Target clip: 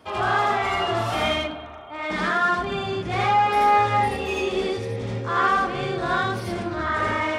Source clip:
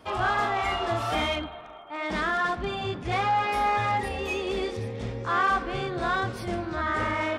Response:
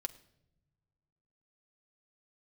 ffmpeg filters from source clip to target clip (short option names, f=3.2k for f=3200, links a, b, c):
-filter_complex "[0:a]highpass=64,asplit=2[a][b];[1:a]atrim=start_sample=2205,adelay=80[c];[b][c]afir=irnorm=-1:irlink=0,volume=3dB[d];[a][d]amix=inputs=2:normalize=0"